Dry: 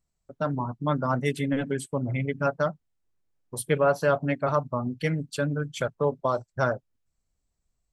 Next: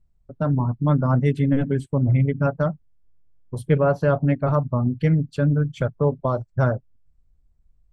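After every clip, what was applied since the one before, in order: RIAA curve playback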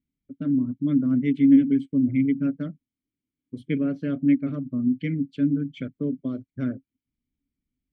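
vowel filter i; trim +8 dB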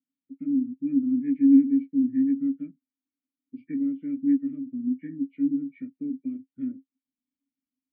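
knee-point frequency compression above 1.2 kHz 1.5:1; vowel filter i

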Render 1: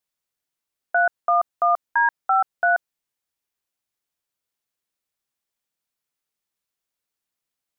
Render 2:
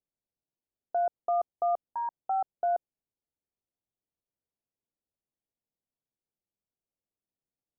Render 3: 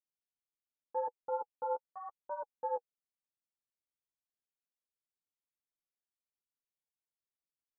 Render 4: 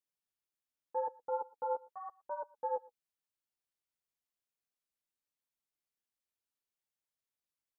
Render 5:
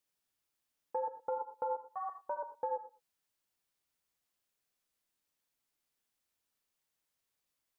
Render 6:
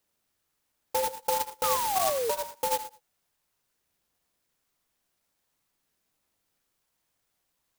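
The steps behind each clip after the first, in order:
Bessel low-pass 520 Hz, order 8
dynamic bell 670 Hz, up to +7 dB, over -42 dBFS, Q 7.6; ring modulator 180 Hz; flange 0.86 Hz, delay 5.2 ms, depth 8.8 ms, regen +8%; trim -7 dB
delay 116 ms -23.5 dB
compression 10:1, threshold -41 dBFS, peak gain reduction 11.5 dB; gated-style reverb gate 110 ms rising, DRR 9 dB; trim +7 dB
phaser 0.48 Hz, delay 1.5 ms, feedback 31%; painted sound fall, 1.63–2.31 s, 430–1300 Hz -37 dBFS; sampling jitter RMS 0.11 ms; trim +8.5 dB

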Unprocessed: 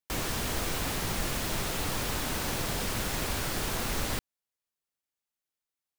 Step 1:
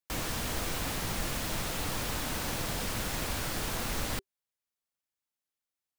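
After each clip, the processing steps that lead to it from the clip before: band-stop 390 Hz, Q 12; trim -2 dB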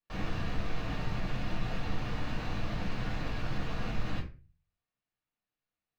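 saturation -38 dBFS, distortion -8 dB; distance through air 240 m; reverberation RT60 0.30 s, pre-delay 4 ms, DRR -6.5 dB; trim -3.5 dB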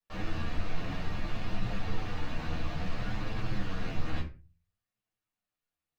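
chorus voices 2, 0.59 Hz, delay 11 ms, depth 1.8 ms; trim +2.5 dB

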